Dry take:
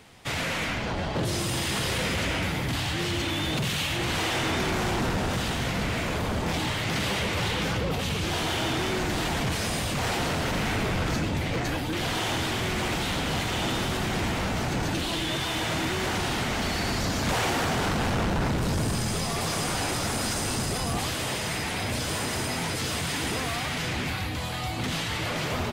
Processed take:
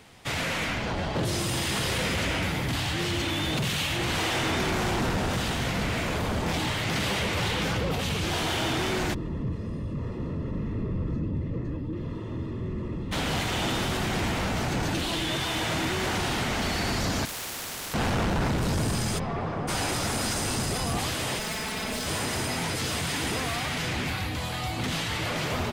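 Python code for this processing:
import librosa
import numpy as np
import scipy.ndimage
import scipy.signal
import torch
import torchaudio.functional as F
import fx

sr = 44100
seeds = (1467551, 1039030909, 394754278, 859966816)

y = fx.moving_average(x, sr, points=58, at=(9.13, 13.11), fade=0.02)
y = fx.spectral_comp(y, sr, ratio=4.0, at=(17.25, 17.94))
y = fx.lowpass(y, sr, hz=fx.line((19.18, 1800.0), (19.67, 1100.0)), slope=12, at=(19.18, 19.67), fade=0.02)
y = fx.lower_of_two(y, sr, delay_ms=4.6, at=(21.39, 22.06))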